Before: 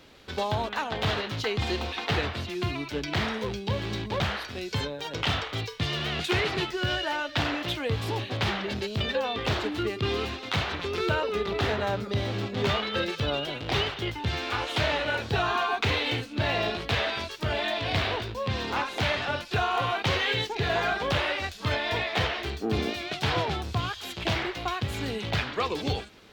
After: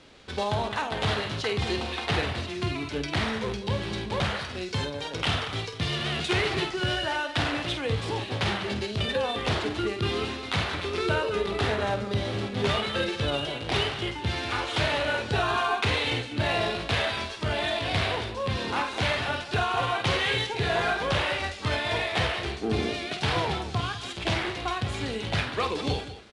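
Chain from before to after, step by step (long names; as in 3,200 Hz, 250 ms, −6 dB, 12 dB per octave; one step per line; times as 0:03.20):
multi-tap delay 49/198 ms −9/−13 dB
IMA ADPCM 88 kbit/s 22,050 Hz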